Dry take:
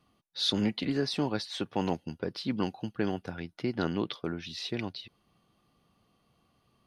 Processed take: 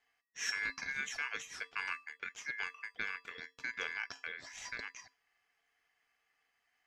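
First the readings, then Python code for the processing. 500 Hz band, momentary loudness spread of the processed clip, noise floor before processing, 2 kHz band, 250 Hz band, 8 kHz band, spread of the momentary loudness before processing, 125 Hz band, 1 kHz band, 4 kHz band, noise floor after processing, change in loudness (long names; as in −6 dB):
−22.0 dB, 8 LU, −72 dBFS, +6.5 dB, −30.5 dB, +2.0 dB, 8 LU, −29.5 dB, −8.5 dB, −11.5 dB, −81 dBFS, −7.5 dB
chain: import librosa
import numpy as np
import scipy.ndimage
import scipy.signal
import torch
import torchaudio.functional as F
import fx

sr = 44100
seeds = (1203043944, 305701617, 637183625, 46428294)

y = fx.comb_fb(x, sr, f0_hz=720.0, decay_s=0.3, harmonics='all', damping=0.0, mix_pct=80)
y = y * np.sin(2.0 * np.pi * 1900.0 * np.arange(len(y)) / sr)
y = y * 10.0 ** (6.5 / 20.0)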